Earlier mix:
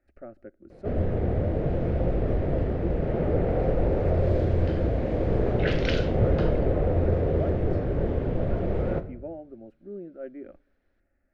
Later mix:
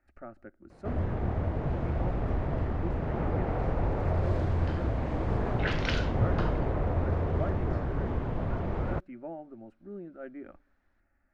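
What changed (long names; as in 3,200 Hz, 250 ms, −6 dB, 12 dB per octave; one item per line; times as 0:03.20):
first sound: send off
second sound −3.5 dB
master: add graphic EQ with 10 bands 500 Hz −9 dB, 1,000 Hz +11 dB, 8,000 Hz +6 dB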